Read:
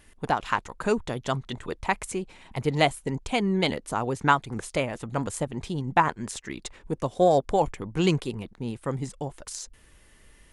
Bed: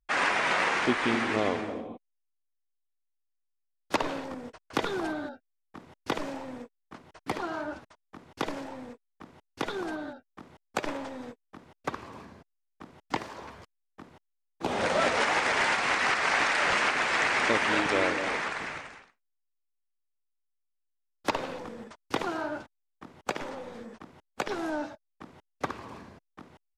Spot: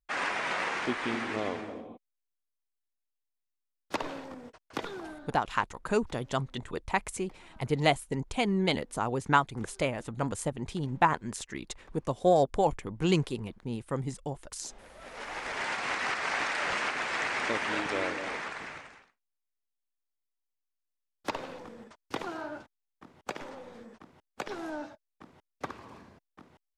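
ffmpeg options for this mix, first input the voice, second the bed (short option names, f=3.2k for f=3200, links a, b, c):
-filter_complex "[0:a]adelay=5050,volume=-3dB[a];[1:a]volume=15.5dB,afade=t=out:st=4.64:d=0.92:silence=0.0891251,afade=t=in:st=15:d=0.86:silence=0.0891251[b];[a][b]amix=inputs=2:normalize=0"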